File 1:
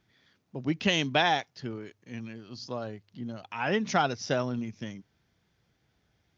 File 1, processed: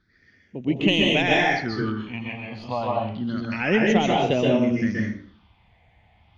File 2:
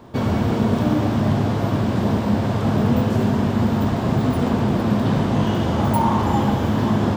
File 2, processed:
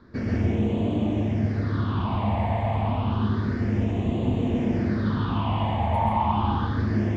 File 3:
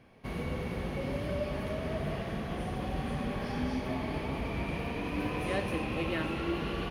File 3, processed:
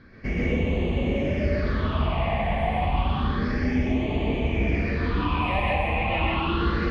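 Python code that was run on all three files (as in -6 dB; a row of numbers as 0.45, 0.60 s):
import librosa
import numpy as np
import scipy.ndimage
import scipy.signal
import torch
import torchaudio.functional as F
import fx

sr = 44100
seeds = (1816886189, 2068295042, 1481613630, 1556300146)

y = fx.tracing_dist(x, sr, depth_ms=0.021)
y = fx.phaser_stages(y, sr, stages=6, low_hz=360.0, high_hz=1400.0, hz=0.3, feedback_pct=40)
y = fx.air_absorb(y, sr, metres=140.0)
y = fx.rev_plate(y, sr, seeds[0], rt60_s=0.52, hf_ratio=0.7, predelay_ms=115, drr_db=-2.5)
y = fx.rider(y, sr, range_db=4, speed_s=0.5)
y = fx.peak_eq(y, sr, hz=130.0, db=-9.0, octaves=0.81)
y = y * 10.0 ** (-24 / 20.0) / np.sqrt(np.mean(np.square(y)))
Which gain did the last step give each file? +10.0, -6.0, +9.0 dB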